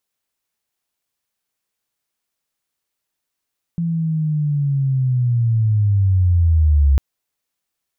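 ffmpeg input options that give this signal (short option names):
-f lavfi -i "aevalsrc='pow(10,(-17.5+8*t/3.2)/20)*sin(2*PI*(170*t-103*t*t/(2*3.2)))':d=3.2:s=44100"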